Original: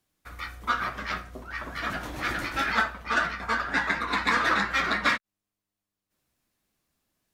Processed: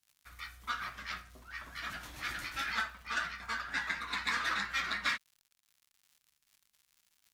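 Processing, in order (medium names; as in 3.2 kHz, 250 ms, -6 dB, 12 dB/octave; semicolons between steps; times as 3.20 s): crackle 130 per s -46 dBFS; amplifier tone stack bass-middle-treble 5-5-5; trim +2 dB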